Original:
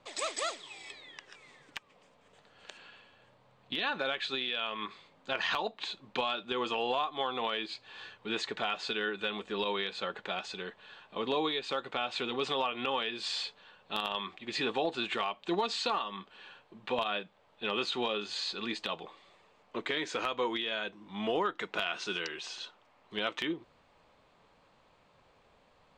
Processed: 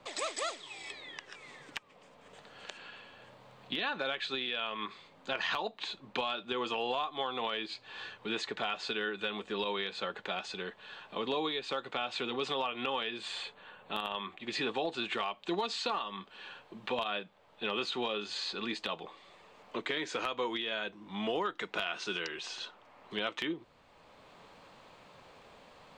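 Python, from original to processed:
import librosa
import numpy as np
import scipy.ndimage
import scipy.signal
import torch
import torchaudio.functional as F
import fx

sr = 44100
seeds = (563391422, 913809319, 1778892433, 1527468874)

y = fx.peak_eq(x, sr, hz=5200.0, db=-12.5, octaves=0.61, at=(13.18, 14.4))
y = fx.band_squash(y, sr, depth_pct=40)
y = F.gain(torch.from_numpy(y), -1.5).numpy()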